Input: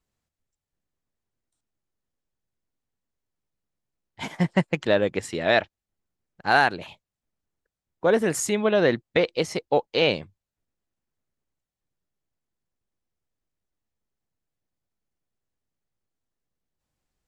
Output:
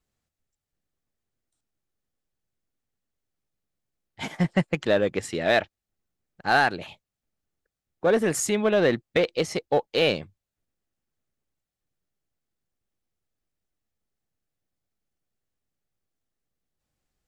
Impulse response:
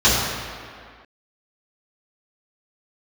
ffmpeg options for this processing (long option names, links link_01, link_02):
-filter_complex "[0:a]bandreject=frequency=980:width=9.7,asplit=2[link_01][link_02];[link_02]asoftclip=type=hard:threshold=-21dB,volume=-6dB[link_03];[link_01][link_03]amix=inputs=2:normalize=0,volume=-3dB"